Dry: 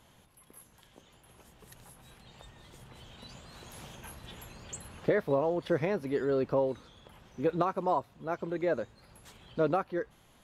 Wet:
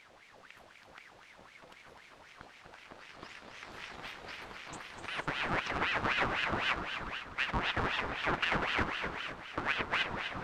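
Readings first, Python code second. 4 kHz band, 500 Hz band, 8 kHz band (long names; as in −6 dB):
+13.0 dB, −12.0 dB, −4.5 dB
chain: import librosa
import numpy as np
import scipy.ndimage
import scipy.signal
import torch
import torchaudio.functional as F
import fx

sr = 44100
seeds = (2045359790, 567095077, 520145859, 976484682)

y = fx.cycle_switch(x, sr, every=2, mode='inverted')
y = scipy.signal.sosfilt(scipy.signal.butter(2, 160.0, 'highpass', fs=sr, output='sos'), y)
y = fx.leveller(y, sr, passes=2)
y = fx.over_compress(y, sr, threshold_db=-26.0, ratio=-0.5)
y = fx.leveller(y, sr, passes=1)
y = fx.dmg_noise_colour(y, sr, seeds[0], colour='pink', level_db=-50.0)
y = fx.quant_dither(y, sr, seeds[1], bits=8, dither='triangular')
y = fx.spacing_loss(y, sr, db_at_10k=25)
y = fx.echo_feedback(y, sr, ms=251, feedback_pct=53, wet_db=-8.5)
y = fx.rev_gated(y, sr, seeds[2], gate_ms=490, shape='rising', drr_db=6.5)
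y = fx.ring_lfo(y, sr, carrier_hz=1400.0, swing_pct=65, hz=3.9)
y = y * 10.0 ** (-4.5 / 20.0)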